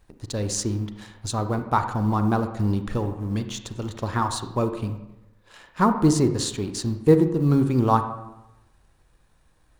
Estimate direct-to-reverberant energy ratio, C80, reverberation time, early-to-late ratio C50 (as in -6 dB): 8.0 dB, 11.5 dB, 0.95 s, 9.0 dB